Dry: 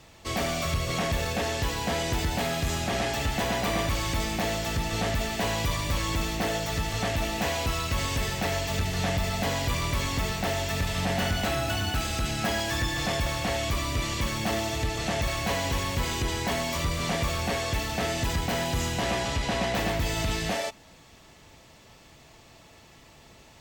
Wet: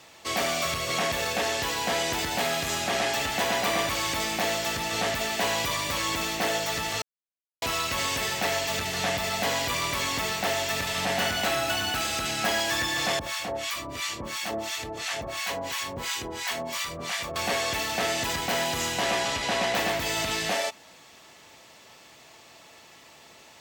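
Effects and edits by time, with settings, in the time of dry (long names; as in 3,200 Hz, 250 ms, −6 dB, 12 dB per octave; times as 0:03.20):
0:07.02–0:07.62: silence
0:13.19–0:17.36: two-band tremolo in antiphase 2.9 Hz, depth 100%, crossover 950 Hz
whole clip: high-pass filter 530 Hz 6 dB per octave; level +4 dB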